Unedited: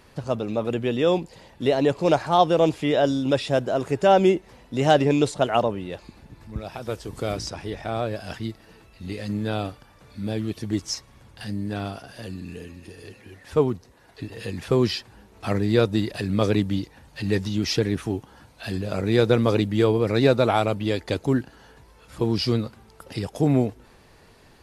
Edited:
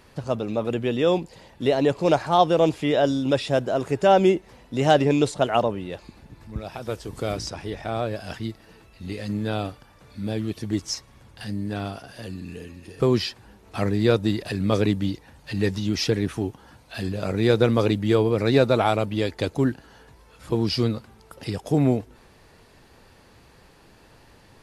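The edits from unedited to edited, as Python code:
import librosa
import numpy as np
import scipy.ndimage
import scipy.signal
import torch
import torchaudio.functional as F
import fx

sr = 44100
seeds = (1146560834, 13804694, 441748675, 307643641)

y = fx.edit(x, sr, fx.cut(start_s=13.0, length_s=1.69), tone=tone)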